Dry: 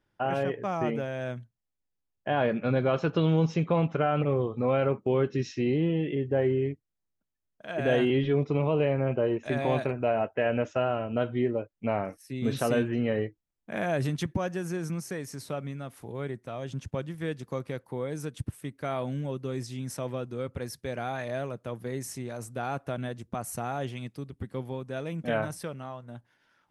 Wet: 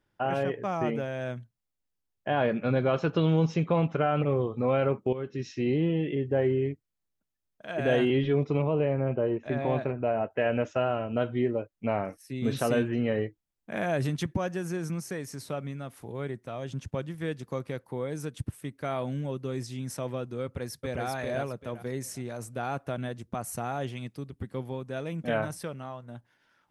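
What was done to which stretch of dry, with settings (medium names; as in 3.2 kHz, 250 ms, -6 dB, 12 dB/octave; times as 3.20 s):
5.13–5.71 s: fade in, from -13 dB
8.62–10.31 s: tape spacing loss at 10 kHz 22 dB
20.44–21.04 s: echo throw 390 ms, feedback 25%, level -2 dB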